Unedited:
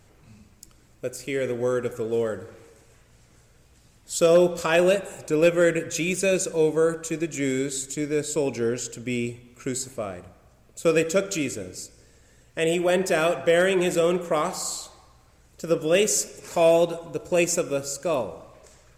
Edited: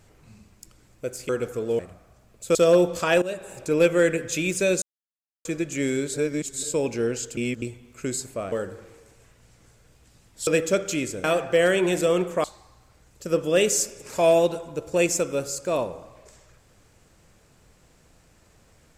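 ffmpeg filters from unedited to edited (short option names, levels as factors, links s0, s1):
-filter_complex "[0:a]asplit=15[s0][s1][s2][s3][s4][s5][s6][s7][s8][s9][s10][s11][s12][s13][s14];[s0]atrim=end=1.292[s15];[s1]atrim=start=1.718:end=2.222[s16];[s2]atrim=start=10.138:end=10.902[s17];[s3]atrim=start=4.168:end=4.84,asetpts=PTS-STARTPTS,afade=t=out:st=0.668:d=0.004:c=hsin:silence=0.133352[s18];[s4]atrim=start=4.84:end=6.44,asetpts=PTS-STARTPTS,afade=t=in:d=0.38:silence=0.133352,afade=t=out:st=1.596:d=0.004:c=hsin[s19];[s5]atrim=start=6.44:end=7.07,asetpts=PTS-STARTPTS,volume=0[s20];[s6]atrim=start=7.07:end=7.762,asetpts=PTS-STARTPTS,afade=t=in:d=0.004:c=hsin[s21];[s7]atrim=start=7.758:end=8.252,asetpts=PTS-STARTPTS,areverse[s22];[s8]atrim=start=8.248:end=8.992[s23];[s9]atrim=start=8.988:end=9.242,asetpts=PTS-STARTPTS,areverse[s24];[s10]atrim=start=9.238:end=10.142[s25];[s11]atrim=start=2.218:end=4.172[s26];[s12]atrim=start=10.898:end=11.672[s27];[s13]atrim=start=13.178:end=14.382[s28];[s14]atrim=start=14.818[s29];[s15][s16]acrossfade=d=0.004:c1=hsin:c2=hsin[s30];[s30][s17]acrossfade=d=0.004:c1=hsin:c2=hsin[s31];[s18][s19][s20][s21]concat=n=4:v=0:a=1[s32];[s31][s32]acrossfade=d=0.004:c1=hsin:c2=hsin[s33];[s33][s22]acrossfade=d=0.004:c1=hsin:c2=hsin[s34];[s34][s23]acrossfade=d=0.004:c1=hsin:c2=hsin[s35];[s35][s24]acrossfade=d=0.004:c1=hsin:c2=hsin[s36];[s36][s25]acrossfade=d=0.004:c1=hsin:c2=hsin[s37];[s37][s26]acrossfade=d=0.004:c1=hsin:c2=hsin[s38];[s38][s27]acrossfade=d=0.004:c1=hsin:c2=hsin[s39];[s39][s28]acrossfade=d=0.004:c1=hsin:c2=hsin[s40];[s40][s29]acrossfade=d=0.004:c1=hsin:c2=hsin"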